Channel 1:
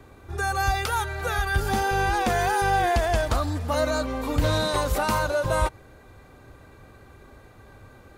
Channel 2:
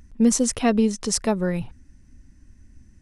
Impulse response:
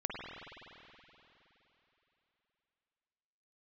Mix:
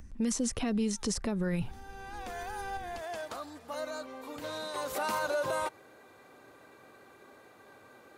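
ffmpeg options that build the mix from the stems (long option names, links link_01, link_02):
-filter_complex "[0:a]highpass=290,volume=-3dB,afade=type=in:start_time=1.4:duration=0.34:silence=0.398107,afade=type=in:start_time=4.73:duration=0.4:silence=0.316228[link_01];[1:a]acrossover=split=470|1200|6000[link_02][link_03][link_04][link_05];[link_02]acompressor=threshold=-26dB:ratio=4[link_06];[link_03]acompressor=threshold=-41dB:ratio=4[link_07];[link_04]acompressor=threshold=-38dB:ratio=4[link_08];[link_05]acompressor=threshold=-38dB:ratio=4[link_09];[link_06][link_07][link_08][link_09]amix=inputs=4:normalize=0,volume=0dB,asplit=2[link_10][link_11];[link_11]apad=whole_len=360348[link_12];[link_01][link_12]sidechaincompress=threshold=-45dB:ratio=5:attack=6.8:release=602[link_13];[link_13][link_10]amix=inputs=2:normalize=0,alimiter=limit=-23dB:level=0:latency=1:release=29"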